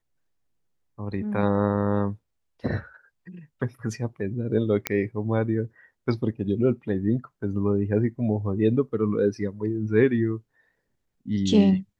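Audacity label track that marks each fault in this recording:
4.870000	4.870000	pop -8 dBFS

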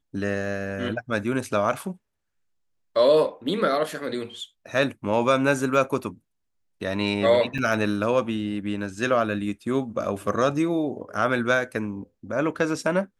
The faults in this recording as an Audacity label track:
7.580000	7.580000	gap 3.8 ms

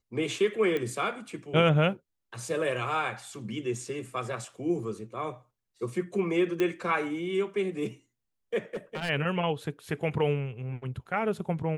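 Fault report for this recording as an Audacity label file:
0.770000	0.770000	pop -19 dBFS
6.600000	6.600000	pop -16 dBFS
8.740000	9.100000	clipped -28 dBFS

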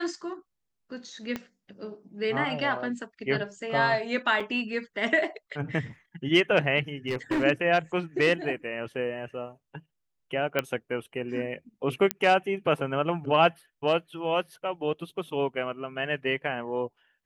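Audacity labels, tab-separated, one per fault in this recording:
1.360000	1.360000	pop -18 dBFS
4.400000	4.400000	gap 4.8 ms
7.080000	7.440000	clipped -23 dBFS
10.590000	10.590000	pop -12 dBFS
12.110000	12.110000	pop -8 dBFS

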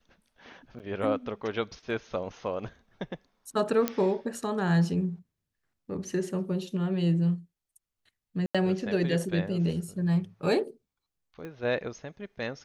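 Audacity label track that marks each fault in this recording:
0.790000	0.800000	gap 8.7 ms
3.880000	3.880000	pop -11 dBFS
8.460000	8.550000	gap 86 ms
11.450000	11.450000	pop -28 dBFS

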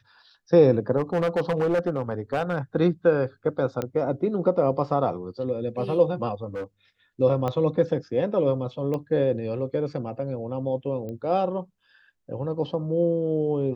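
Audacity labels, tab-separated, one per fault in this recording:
0.970000	2.580000	clipped -19 dBFS
3.820000	3.820000	pop -15 dBFS
6.540000	6.640000	clipped -28 dBFS
7.480000	7.480000	pop -16 dBFS
8.940000	8.940000	pop -19 dBFS
11.090000	11.090000	pop -25 dBFS

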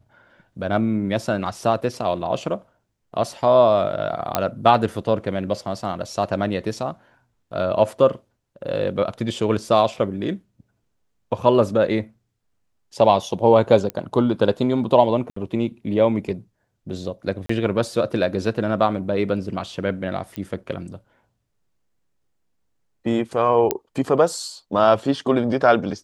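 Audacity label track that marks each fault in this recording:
4.350000	4.350000	pop -3 dBFS
13.900000	13.900000	pop -13 dBFS
15.300000	15.360000	gap 64 ms
17.460000	17.490000	gap 34 ms
20.360000	20.360000	pop -16 dBFS
23.710000	23.710000	pop -4 dBFS

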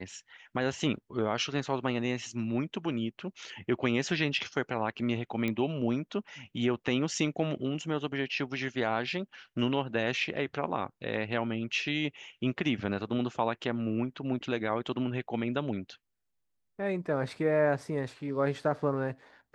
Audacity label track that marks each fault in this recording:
5.480000	5.480000	pop -19 dBFS

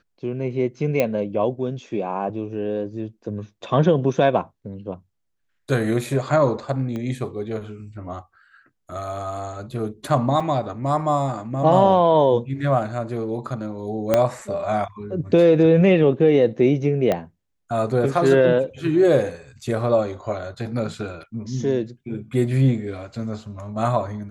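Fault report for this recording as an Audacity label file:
1.000000	1.000000	pop -7 dBFS
6.960000	6.960000	pop -19 dBFS
10.400000	10.400000	gap 4.3 ms
14.140000	14.140000	pop -4 dBFS
17.120000	17.120000	pop -9 dBFS

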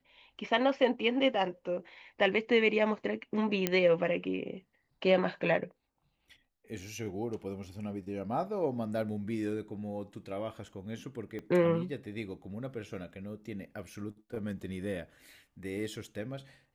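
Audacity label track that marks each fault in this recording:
3.670000	3.670000	pop -12 dBFS
11.390000	11.390000	pop -29 dBFS

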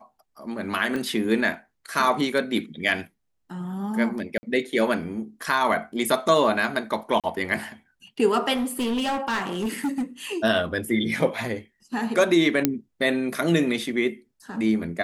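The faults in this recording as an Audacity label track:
0.960000	0.960000	pop -18 dBFS
4.380000	4.430000	gap 50 ms
7.200000	7.240000	gap 37 ms
8.540000	10.030000	clipped -22 dBFS
12.650000	12.650000	pop -4 dBFS

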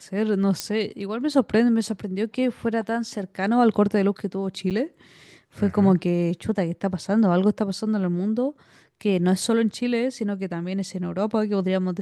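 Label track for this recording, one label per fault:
0.600000	0.600000	pop -10 dBFS
4.700000	4.710000	gap 8 ms

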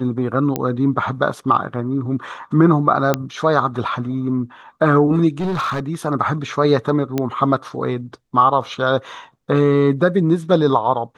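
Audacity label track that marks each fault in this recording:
0.560000	0.560000	pop -6 dBFS
3.140000	3.140000	pop -3 dBFS
5.400000	5.800000	clipped -18 dBFS
7.180000	7.180000	pop -7 dBFS

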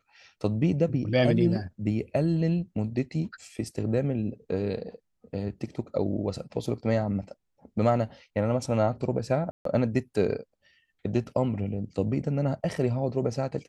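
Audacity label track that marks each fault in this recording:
9.510000	9.650000	gap 0.143 s

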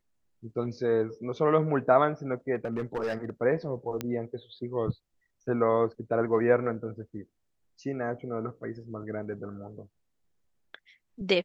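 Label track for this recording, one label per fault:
2.550000	3.300000	clipped -26 dBFS
4.010000	4.010000	pop -16 dBFS

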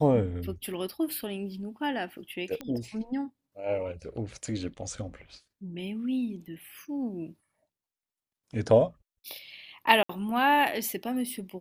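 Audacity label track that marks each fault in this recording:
2.610000	2.610000	pop -22 dBFS
10.030000	10.090000	gap 64 ms

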